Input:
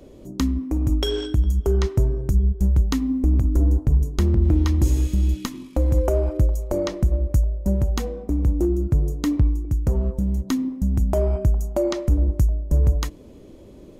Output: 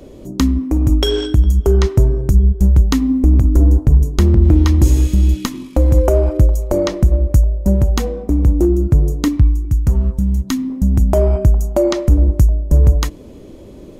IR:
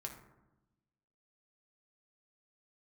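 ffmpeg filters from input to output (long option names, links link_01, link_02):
-filter_complex "[0:a]asettb=1/sr,asplit=3[link_01][link_02][link_03];[link_01]atrim=end=9.284[link_04];[link_02]atrim=start=9.28:end=10.7,asetpts=PTS-STARTPTS,afade=type=in:duration=0.004:curve=qsin,afade=type=out:start_time=1.416:duration=0.004:curve=qsin,equalizer=frequency=510:width=0.97:gain=-11.5[link_05];[link_03]atrim=start=10.696[link_06];[link_04][link_05]acrossfade=duration=0.004:curve1=hsin:curve2=qsin[link_07];[link_07][link_06]acrossfade=duration=0.004:curve1=qsin:curve2=hsin,volume=7.5dB"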